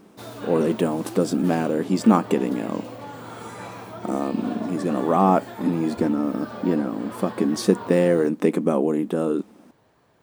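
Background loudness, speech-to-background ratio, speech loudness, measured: −37.0 LKFS, 14.5 dB, −22.5 LKFS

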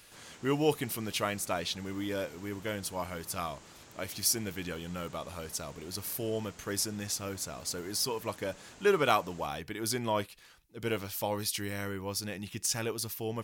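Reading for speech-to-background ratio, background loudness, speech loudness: 20.0 dB, −53.5 LKFS, −33.5 LKFS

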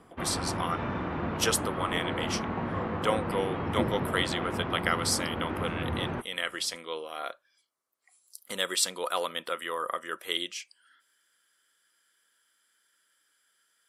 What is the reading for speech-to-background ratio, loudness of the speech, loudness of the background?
1.0 dB, −32.0 LKFS, −33.0 LKFS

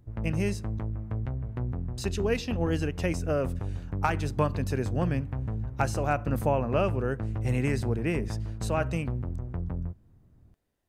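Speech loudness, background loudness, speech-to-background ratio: −30.5 LKFS, −34.5 LKFS, 4.0 dB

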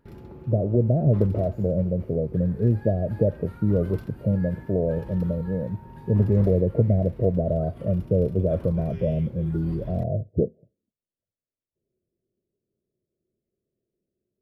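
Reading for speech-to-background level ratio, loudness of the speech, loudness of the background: 18.0 dB, −24.5 LKFS, −42.5 LKFS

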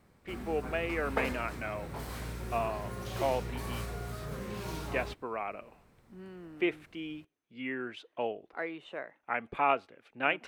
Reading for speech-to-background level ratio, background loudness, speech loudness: 4.0 dB, −40.0 LKFS, −36.0 LKFS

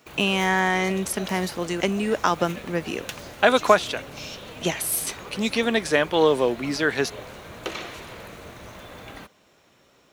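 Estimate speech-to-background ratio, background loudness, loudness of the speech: 15.5 dB, −38.5 LKFS, −23.0 LKFS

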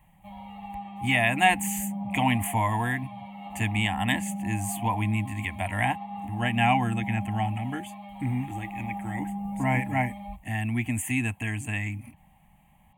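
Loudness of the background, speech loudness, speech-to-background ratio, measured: −37.0 LKFS, −28.0 LKFS, 9.0 dB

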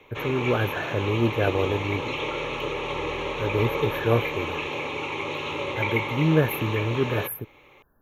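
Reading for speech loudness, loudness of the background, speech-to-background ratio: −26.5 LKFS, −29.5 LKFS, 3.0 dB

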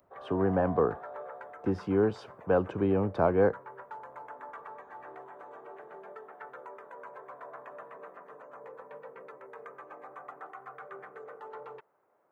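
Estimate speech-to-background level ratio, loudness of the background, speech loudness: 17.5 dB, −46.0 LKFS, −28.5 LKFS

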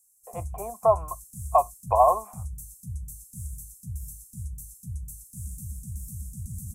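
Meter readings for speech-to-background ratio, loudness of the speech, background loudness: 15.5 dB, −23.5 LKFS, −39.0 LKFS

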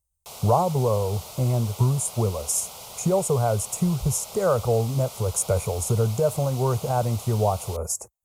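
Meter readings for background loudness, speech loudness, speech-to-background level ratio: −38.5 LKFS, −24.5 LKFS, 14.0 dB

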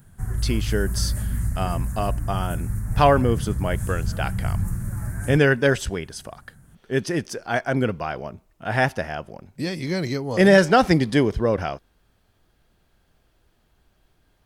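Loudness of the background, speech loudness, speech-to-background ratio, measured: −28.0 LKFS, −23.0 LKFS, 5.0 dB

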